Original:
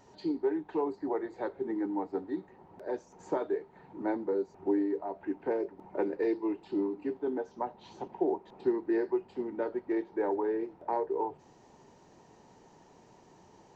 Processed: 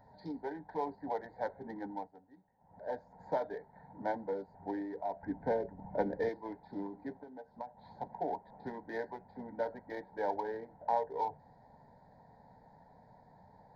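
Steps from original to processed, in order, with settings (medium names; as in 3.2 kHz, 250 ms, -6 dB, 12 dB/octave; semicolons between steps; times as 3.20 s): local Wiener filter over 15 samples; 5.23–6.29 s: bass shelf 300 Hz +12 dB; 7.12–7.77 s: compression 12:1, threshold -40 dBFS, peak gain reduction 12.5 dB; static phaser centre 1.8 kHz, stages 8; 1.87–2.85 s: dip -16.5 dB, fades 0.26 s; trim +2.5 dB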